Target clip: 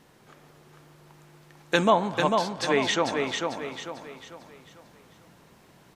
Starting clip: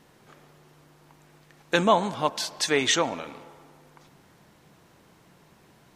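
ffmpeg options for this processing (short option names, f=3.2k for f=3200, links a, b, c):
-filter_complex "[0:a]asettb=1/sr,asplit=3[a][b][c];[a]atrim=end=1.904[d];[b]atrim=start=1.9:end=3.17,asetpts=PTS-STARTPTS,afade=t=in:d=0.004:c=qsin,afade=t=out:st=1.266:d=0.004:c=qsin,lowpass=f=2.5k:p=1[e];[c]atrim=start=3.166[f];[d][e]acrossfade=d=0.004:c1=hsin:c2=qsin[g];[g][f]acrossfade=d=0.004:c1=qsin:c2=hsin,aecho=1:1:446|892|1338|1784|2230:0.596|0.238|0.0953|0.0381|0.0152"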